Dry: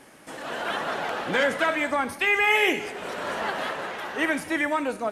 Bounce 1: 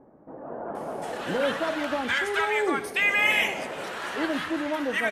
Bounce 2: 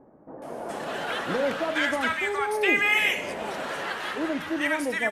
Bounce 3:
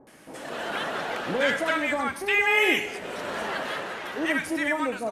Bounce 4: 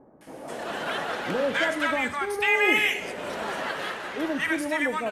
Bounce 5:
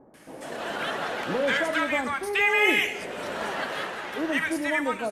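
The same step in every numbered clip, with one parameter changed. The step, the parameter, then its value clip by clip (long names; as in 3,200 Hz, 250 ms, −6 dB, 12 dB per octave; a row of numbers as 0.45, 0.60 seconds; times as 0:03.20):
multiband delay without the direct sound, delay time: 750, 420, 70, 210, 140 milliseconds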